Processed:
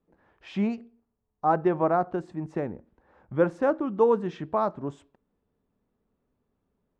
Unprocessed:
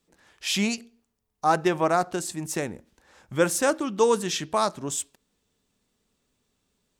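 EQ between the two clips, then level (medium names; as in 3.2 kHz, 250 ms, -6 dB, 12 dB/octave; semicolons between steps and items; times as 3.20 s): low-pass 1.1 kHz 12 dB/octave; 0.0 dB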